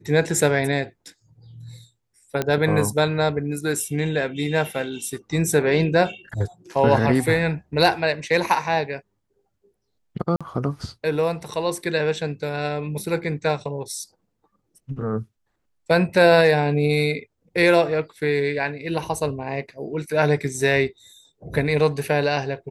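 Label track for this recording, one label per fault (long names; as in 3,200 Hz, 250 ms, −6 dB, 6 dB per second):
2.420000	2.420000	click −9 dBFS
10.360000	10.410000	drop-out 46 ms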